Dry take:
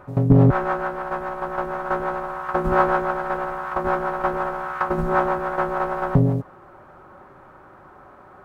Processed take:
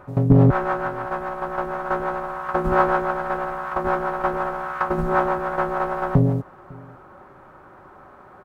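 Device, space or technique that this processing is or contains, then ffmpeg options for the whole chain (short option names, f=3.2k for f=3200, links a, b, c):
ducked delay: -filter_complex "[0:a]asplit=3[a][b][c];[b]adelay=551,volume=-7dB[d];[c]apad=whole_len=396607[e];[d][e]sidechaincompress=threshold=-44dB:ratio=3:attack=16:release=886[f];[a][f]amix=inputs=2:normalize=0"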